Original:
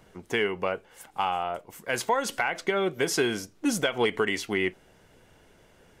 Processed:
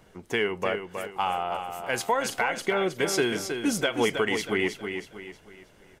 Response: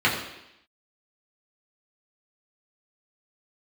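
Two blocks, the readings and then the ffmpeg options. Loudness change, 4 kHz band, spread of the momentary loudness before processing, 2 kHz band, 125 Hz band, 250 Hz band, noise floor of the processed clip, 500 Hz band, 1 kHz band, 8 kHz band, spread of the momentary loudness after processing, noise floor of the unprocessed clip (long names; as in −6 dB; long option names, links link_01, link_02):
+0.5 dB, +1.0 dB, 6 LU, +1.0 dB, +0.5 dB, +1.0 dB, −57 dBFS, +1.0 dB, +1.0 dB, +1.0 dB, 10 LU, −59 dBFS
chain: -af "aecho=1:1:318|636|954|1272:0.447|0.17|0.0645|0.0245"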